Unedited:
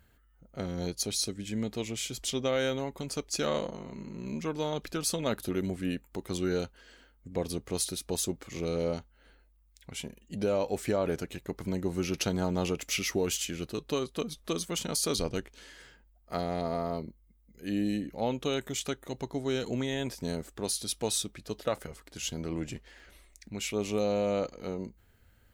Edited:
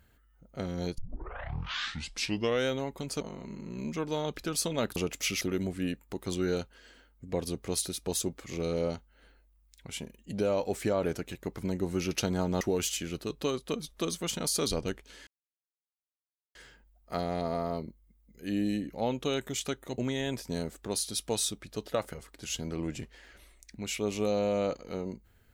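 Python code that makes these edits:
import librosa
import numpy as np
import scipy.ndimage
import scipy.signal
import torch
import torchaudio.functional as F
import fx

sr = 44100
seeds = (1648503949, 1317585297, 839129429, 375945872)

y = fx.edit(x, sr, fx.tape_start(start_s=0.98, length_s=1.68),
    fx.cut(start_s=3.21, length_s=0.48),
    fx.move(start_s=12.64, length_s=0.45, to_s=5.44),
    fx.insert_silence(at_s=15.75, length_s=1.28),
    fx.cut(start_s=19.18, length_s=0.53), tone=tone)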